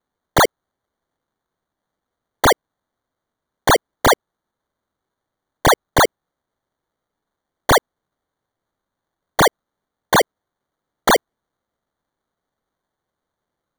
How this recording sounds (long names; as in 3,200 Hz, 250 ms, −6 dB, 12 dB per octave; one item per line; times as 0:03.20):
aliases and images of a low sample rate 2,600 Hz, jitter 0%